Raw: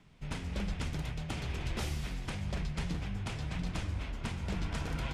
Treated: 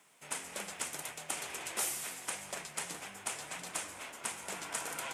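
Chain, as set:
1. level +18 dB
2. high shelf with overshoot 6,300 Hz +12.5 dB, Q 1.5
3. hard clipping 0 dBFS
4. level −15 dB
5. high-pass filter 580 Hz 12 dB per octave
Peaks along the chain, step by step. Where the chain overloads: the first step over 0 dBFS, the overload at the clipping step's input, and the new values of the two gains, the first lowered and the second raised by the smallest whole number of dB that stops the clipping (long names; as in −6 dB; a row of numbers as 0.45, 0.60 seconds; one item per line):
−5.5, −4.0, −4.0, −19.0, −19.5 dBFS
no step passes full scale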